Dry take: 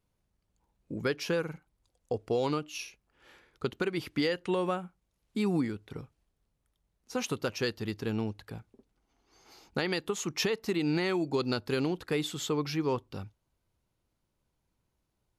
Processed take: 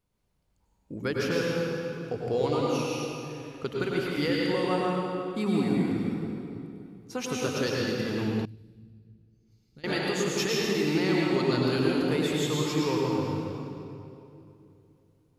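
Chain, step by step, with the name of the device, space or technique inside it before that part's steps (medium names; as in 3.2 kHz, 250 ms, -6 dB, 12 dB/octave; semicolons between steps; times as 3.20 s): stairwell (reverberation RT60 2.8 s, pre-delay 91 ms, DRR -4 dB); 8.45–9.84 s: amplifier tone stack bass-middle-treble 10-0-1; trim -1 dB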